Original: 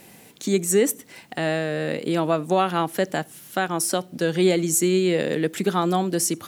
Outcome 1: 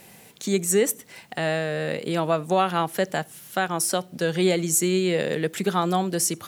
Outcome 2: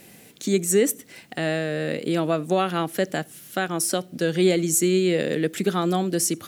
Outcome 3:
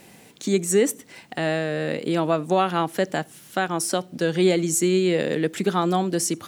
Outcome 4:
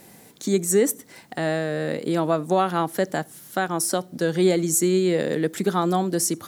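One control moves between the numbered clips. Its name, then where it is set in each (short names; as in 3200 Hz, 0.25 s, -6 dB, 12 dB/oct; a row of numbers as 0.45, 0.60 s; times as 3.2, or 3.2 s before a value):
bell, frequency: 290, 930, 13000, 2700 Hz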